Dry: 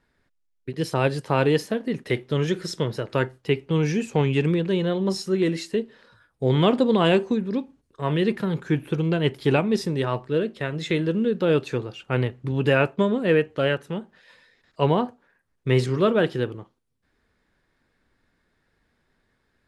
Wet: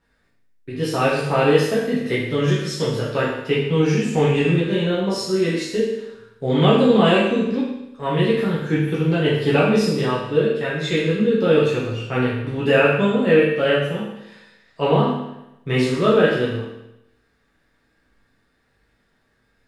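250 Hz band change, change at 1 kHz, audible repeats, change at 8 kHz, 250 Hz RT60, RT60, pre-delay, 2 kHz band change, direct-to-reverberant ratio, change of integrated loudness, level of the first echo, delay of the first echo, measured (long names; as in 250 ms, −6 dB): +4.0 dB, +4.5 dB, no echo audible, +5.0 dB, 0.90 s, 0.90 s, 9 ms, +5.5 dB, −7.5 dB, +4.5 dB, no echo audible, no echo audible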